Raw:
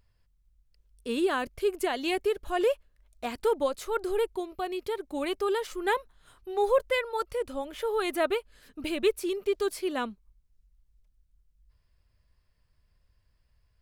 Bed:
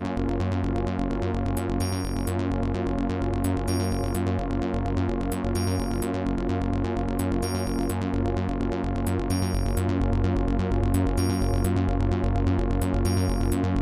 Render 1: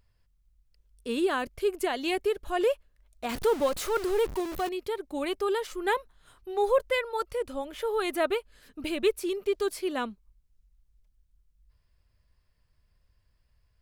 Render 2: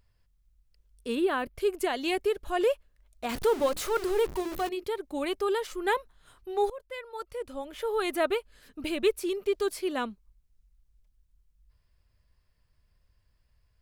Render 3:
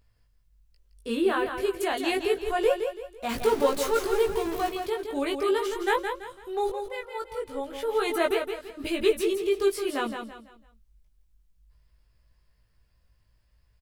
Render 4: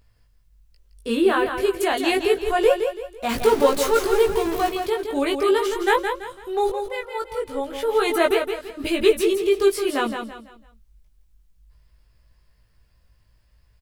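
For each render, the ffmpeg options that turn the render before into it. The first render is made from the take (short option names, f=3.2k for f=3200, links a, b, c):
-filter_complex "[0:a]asettb=1/sr,asplit=3[a][b][c];[a]atrim=end=3.294[d];[b]atrim=start=3.29:end=4.69,asetpts=PTS-STARTPTS,afade=t=in:d=0.004:c=qsin,afade=t=out:st=1.396:d=0.004:c=qsin,aeval=exprs='val(0)+0.5*0.0237*sgn(val(0))':c=same[e];[c]atrim=start=4.686[f];[d][e]acrossfade=d=0.004:c1=hsin:c2=qsin[g];[g][f]acrossfade=d=0.004:c1=qsin:c2=hsin"
-filter_complex "[0:a]asettb=1/sr,asplit=3[a][b][c];[a]atrim=end=1.154[d];[b]atrim=start=1.15:end=1.56,asetpts=PTS-STARTPTS,afade=t=in:d=0.004:c=qsin,afade=t=out:st=0.406:d=0.004:c=qsin,equalizer=f=6.5k:w=1.4:g=-14.5[e];[c]atrim=start=1.556[f];[d][e]acrossfade=d=0.004:c1=hsin:c2=qsin[g];[g][f]acrossfade=d=0.004:c1=qsin:c2=hsin,asettb=1/sr,asplit=3[h][i][j];[h]atrim=end=3.474[k];[i]atrim=start=3.47:end=4.84,asetpts=PTS-STARTPTS,afade=t=in:d=0.004:c=qsin,afade=t=out:st=1.366:d=0.004:c=qsin,bandreject=f=50:t=h:w=6,bandreject=f=100:t=h:w=6,bandreject=f=150:t=h:w=6,bandreject=f=200:t=h:w=6,bandreject=f=250:t=h:w=6,bandreject=f=300:t=h:w=6,bandreject=f=350:t=h:w=6,bandreject=f=400:t=h:w=6[l];[j]atrim=start=4.836[m];[k][l]acrossfade=d=0.004:c1=hsin:c2=qsin[n];[n][m]acrossfade=d=0.004:c1=qsin:c2=hsin,asplit=2[o][p];[o]atrim=end=6.7,asetpts=PTS-STARTPTS,afade=t=out:st=6.696:d=0.004:c=hsin:silence=0.0707946[q];[p]atrim=start=6.7,asetpts=PTS-STARTPTS,afade=t=in:d=1.31:silence=0.0707946[r];[q][r]concat=n=2:v=0:a=1"
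-filter_complex "[0:a]asplit=2[a][b];[b]adelay=18,volume=-2.5dB[c];[a][c]amix=inputs=2:normalize=0,aecho=1:1:167|334|501|668:0.447|0.152|0.0516|0.0176"
-af "volume=6dB"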